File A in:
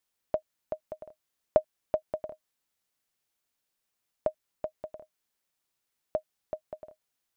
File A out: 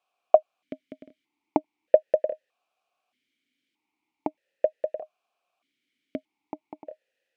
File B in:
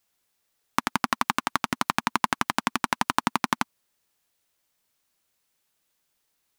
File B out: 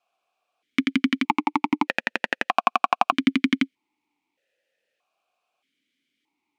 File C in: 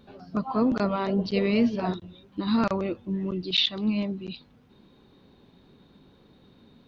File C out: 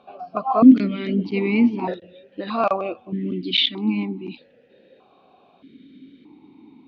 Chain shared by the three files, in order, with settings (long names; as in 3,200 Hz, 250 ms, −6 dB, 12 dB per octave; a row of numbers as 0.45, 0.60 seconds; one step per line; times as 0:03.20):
formant filter that steps through the vowels 1.6 Hz
normalise the peak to −1.5 dBFS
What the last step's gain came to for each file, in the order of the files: +21.0, +16.0, +17.5 decibels